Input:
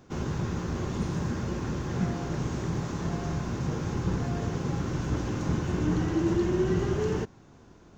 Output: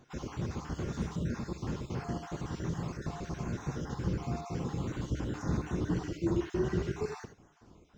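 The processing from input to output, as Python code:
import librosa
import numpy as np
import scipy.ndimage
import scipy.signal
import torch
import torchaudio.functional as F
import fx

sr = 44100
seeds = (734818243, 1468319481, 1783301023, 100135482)

y = fx.spec_dropout(x, sr, seeds[0], share_pct=42)
y = fx.rev_gated(y, sr, seeds[1], gate_ms=100, shape='rising', drr_db=8.0)
y = y * 10.0 ** (-4.0 / 20.0)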